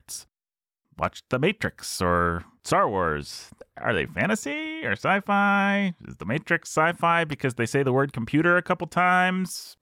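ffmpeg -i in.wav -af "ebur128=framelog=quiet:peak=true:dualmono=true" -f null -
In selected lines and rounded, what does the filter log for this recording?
Integrated loudness:
  I:         -21.2 LUFS
  Threshold: -31.6 LUFS
Loudness range:
  LRA:         3.3 LU
  Threshold: -41.6 LUFS
  LRA low:   -23.3 LUFS
  LRA high:  -20.0 LUFS
True peak:
  Peak:       -9.4 dBFS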